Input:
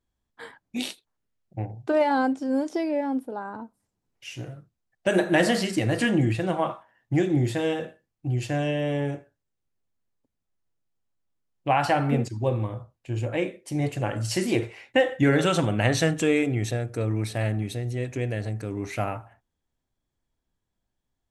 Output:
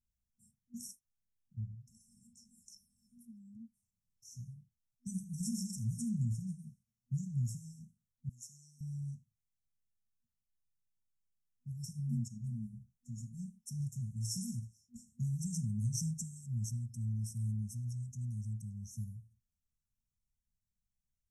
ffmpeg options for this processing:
ffmpeg -i in.wav -filter_complex "[0:a]asettb=1/sr,asplit=3[link_01][link_02][link_03];[link_01]atrim=end=8.294[link_04];[link_02]atrim=start=8.29:end=8.81,asetpts=PTS-STARTPTS,afade=type=in:duration=0.004:curve=qsin,afade=type=out:start_time=0.516:duration=0.004:curve=qsin,highpass=560[link_05];[link_03]atrim=start=8.806[link_06];[link_04][link_05]acrossfade=duration=0.004:curve1=hsin:curve2=qsin[link_07];[link_07][link_06]acrossfade=duration=0.004:curve1=qsin:curve2=hsin,asettb=1/sr,asplit=3[link_08][link_09][link_10];[link_08]atrim=end=12.304[link_11];[link_09]atrim=start=12.3:end=13.7,asetpts=PTS-STARTPTS,afade=type=in:duration=0.004:curve=qsin,afade=type=out:start_time=1.396:duration=0.004:curve=qsin,aecho=1:1:5:0.81,atrim=end_sample=61740[link_12];[link_10]atrim=start=13.696[link_13];[link_11][link_12]acrossfade=duration=0.004:curve1=hsin:curve2=qsin[link_14];[link_14][link_13]acrossfade=duration=0.004:curve1=qsin:curve2=hsin,afftfilt=real='re*(1-between(b*sr/4096,240,5300))':imag='im*(1-between(b*sr/4096,240,5300))':win_size=4096:overlap=0.75,equalizer=frequency=210:width=0.56:gain=-4,volume=-6dB" out.wav

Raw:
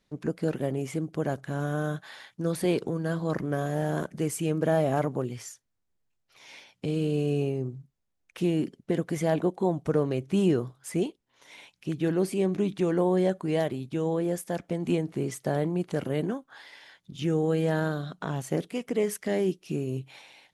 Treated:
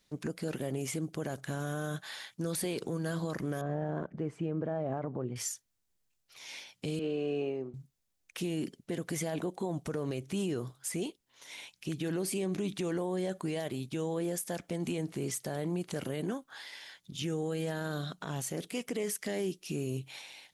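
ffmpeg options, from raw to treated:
ffmpeg -i in.wav -filter_complex "[0:a]asettb=1/sr,asplit=3[link_01][link_02][link_03];[link_01]atrim=end=3.614[link_04];[link_02]atrim=start=3.61:end=5.36,asetpts=PTS-STARTPTS,afade=type=in:duration=0.004:curve=qsin,afade=type=out:start_time=1.746:duration=0.004:curve=qsin,lowpass=1200[link_05];[link_03]atrim=start=5.356[link_06];[link_04][link_05]acrossfade=duration=0.004:curve1=hsin:curve2=qsin[link_07];[link_07][link_06]acrossfade=duration=0.004:curve1=qsin:curve2=hsin,asettb=1/sr,asplit=3[link_08][link_09][link_10];[link_08]atrim=end=6.994[link_11];[link_09]atrim=start=6.99:end=7.74,asetpts=PTS-STARTPTS,afade=type=in:duration=0.004:curve=qsin,afade=type=out:start_time=0.746:duration=0.004:curve=qsin,highpass=300,lowpass=2300[link_12];[link_10]atrim=start=7.736[link_13];[link_11][link_12]acrossfade=duration=0.004:curve1=hsin:curve2=qsin[link_14];[link_14][link_13]acrossfade=duration=0.004:curve1=qsin:curve2=hsin,highshelf=frequency=2800:gain=11,alimiter=limit=-23dB:level=0:latency=1:release=68,volume=-2.5dB" out.wav

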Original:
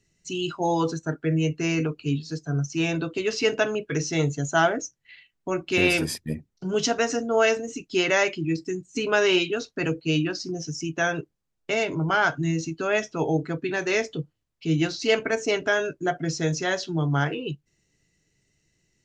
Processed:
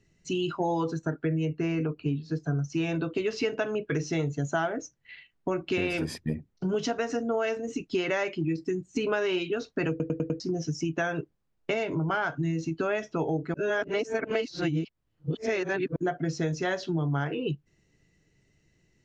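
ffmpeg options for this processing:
ffmpeg -i in.wav -filter_complex "[0:a]asettb=1/sr,asplit=3[link_01][link_02][link_03];[link_01]atrim=end=1.454[link_04];[link_02]atrim=start=1.45:end=2.4,asetpts=PTS-STARTPTS,afade=type=in:duration=0.004:curve=qsin,afade=type=out:start_time=0.946:duration=0.004:curve=qsin,highshelf=frequency=4200:gain=-11.5[link_05];[link_03]atrim=start=2.396[link_06];[link_04][link_05]acrossfade=duration=0.004:curve1=hsin:curve2=qsin[link_07];[link_07][link_06]acrossfade=duration=0.004:curve1=qsin:curve2=hsin,asplit=8[link_08][link_09][link_10][link_11][link_12][link_13][link_14][link_15];[link_08]atrim=end=10.002[link_16];[link_09]atrim=start=9.898:end=10.002[link_17];[link_10]atrim=start=9.898:end=10.002[link_18];[link_11]atrim=start=9.898:end=10.002[link_19];[link_12]atrim=start=9.898:end=10.002[link_20];[link_13]atrim=start=10.398:end=13.542[link_21];[link_14]atrim=start=13.538:end=15.962,asetpts=PTS-STARTPTS,areverse[link_22];[link_15]atrim=start=15.958[link_23];[link_16][link_17]acrossfade=duration=0.004:curve1=hsin:curve2=hsin[link_24];[link_24][link_18]acrossfade=duration=0.004:curve1=hsin:curve2=hsin[link_25];[link_25][link_19]acrossfade=duration=0.004:curve1=hsin:curve2=hsin[link_26];[link_26][link_20]acrossfade=duration=0.004:curve1=hsin:curve2=hsin[link_27];[link_27][link_21]acrossfade=duration=0.004:curve1=hsin:curve2=hsin[link_28];[link_28][link_22]acrossfade=duration=0.004:curve1=hsin:curve2=hsin[link_29];[link_29][link_23]acrossfade=duration=0.004:curve1=hsin:curve2=hsin,lowpass=frequency=2100:poles=1,acompressor=threshold=-30dB:ratio=6,volume=4.5dB" out.wav

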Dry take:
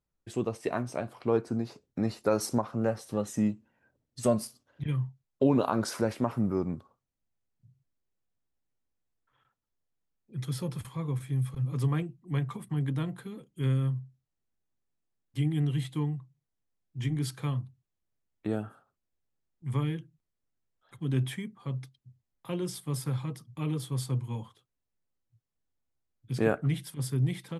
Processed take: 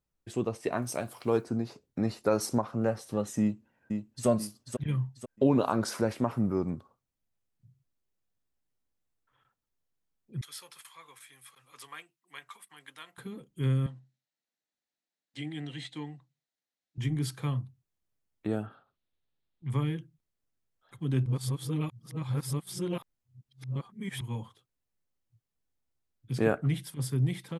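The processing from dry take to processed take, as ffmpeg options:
ffmpeg -i in.wav -filter_complex "[0:a]asettb=1/sr,asplit=3[link_01][link_02][link_03];[link_01]atrim=end=0.824[link_04];[link_02]atrim=start=0.82:end=1.44,asetpts=PTS-STARTPTS,afade=type=in:duration=0.004:curve=qsin,afade=type=out:start_time=0.616:duration=0.004:curve=qsin,aemphasis=mode=production:type=75fm[link_05];[link_03]atrim=start=1.436[link_06];[link_04][link_05]acrossfade=duration=0.004:curve1=hsin:curve2=qsin[link_07];[link_07][link_06]acrossfade=duration=0.004:curve1=qsin:curve2=hsin,asplit=2[link_08][link_09];[link_09]afade=type=in:start_time=3.41:duration=0.01,afade=type=out:start_time=4.27:duration=0.01,aecho=0:1:490|980|1470|1960|2450:0.530884|0.212354|0.0849415|0.0339766|0.0135906[link_10];[link_08][link_10]amix=inputs=2:normalize=0,asettb=1/sr,asplit=3[link_11][link_12][link_13];[link_11]atrim=end=10.414[link_14];[link_12]atrim=start=10.41:end=13.18,asetpts=PTS-STARTPTS,afade=type=in:duration=0.004:curve=qsin,afade=type=out:start_time=2.766:duration=0.004:curve=qsin,highpass=1400[link_15];[link_13]atrim=start=13.176[link_16];[link_14][link_15]acrossfade=duration=0.004:curve1=hsin:curve2=qsin[link_17];[link_17][link_16]acrossfade=duration=0.004:curve1=qsin:curve2=hsin,asettb=1/sr,asplit=3[link_18][link_19][link_20];[link_18]atrim=end=13.864[link_21];[link_19]atrim=start=13.86:end=16.98,asetpts=PTS-STARTPTS,afade=type=in:duration=0.004:curve=qsin,afade=type=out:start_time=3.116:duration=0.004:curve=qsin,highpass=320,equalizer=frequency=400:width_type=q:width=4:gain=-9,equalizer=frequency=1100:width_type=q:width=4:gain=-8,equalizer=frequency=1900:width_type=q:width=4:gain=4,equalizer=frequency=4000:width_type=q:width=4:gain=6,lowpass=frequency=8000:width=0.5412,lowpass=frequency=8000:width=1.3066[link_22];[link_20]atrim=start=16.976[link_23];[link_21][link_22]acrossfade=duration=0.004:curve1=hsin:curve2=qsin[link_24];[link_24][link_23]acrossfade=duration=0.004:curve1=qsin:curve2=hsin,asettb=1/sr,asplit=3[link_25][link_26][link_27];[link_25]atrim=end=18.664[link_28];[link_26]atrim=start=18.66:end=19.7,asetpts=PTS-STARTPTS,afade=type=in:duration=0.004:curve=qsin,afade=type=out:start_time=1.036:duration=0.004:curve=qsin,highshelf=frequency=5400:width_type=q:width=3:gain=-13[link_29];[link_27]atrim=start=19.696[link_30];[link_28][link_29]acrossfade=duration=0.004:curve1=hsin:curve2=qsin[link_31];[link_31][link_30]acrossfade=duration=0.004:curve1=qsin:curve2=hsin,asplit=3[link_32][link_33][link_34];[link_32]atrim=end=21.262[link_35];[link_33]atrim=start=21.258:end=24.212,asetpts=PTS-STARTPTS,areverse[link_36];[link_34]atrim=start=24.208[link_37];[link_35][link_36]acrossfade=duration=0.004:curve1=hsin:curve2=hsin[link_38];[link_38][link_37]acrossfade=duration=0.004:curve1=hsin:curve2=hsin" out.wav

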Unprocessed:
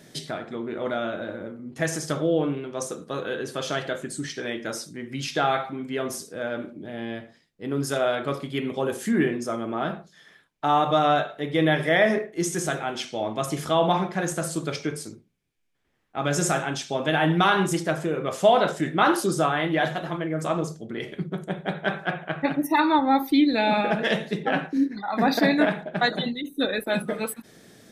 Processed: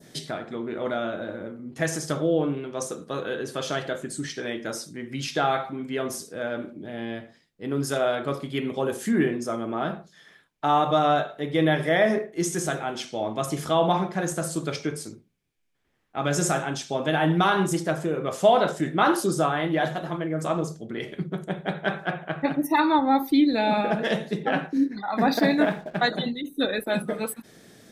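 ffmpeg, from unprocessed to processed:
ffmpeg -i in.wav -filter_complex "[0:a]asettb=1/sr,asplit=3[link_01][link_02][link_03];[link_01]atrim=end=25.324[link_04];[link_02]atrim=start=25.32:end=25.98,asetpts=PTS-STARTPTS,afade=type=in:duration=0.004:curve=qsin,afade=type=out:start_time=0.656:duration=0.004:curve=qsin,aeval=exprs='sgn(val(0))*max(abs(val(0))-0.00316,0)':channel_layout=same[link_05];[link_03]atrim=start=25.976[link_06];[link_04][link_05]acrossfade=duration=0.004:curve1=hsin:curve2=qsin[link_07];[link_07][link_06]acrossfade=duration=0.004:curve1=qsin:curve2=hsin,adynamicequalizer=threshold=0.01:dfrequency=2400:dqfactor=0.87:tfrequency=2400:tqfactor=0.87:attack=5:release=100:ratio=0.375:range=2.5:mode=cutabove:tftype=bell" out.wav

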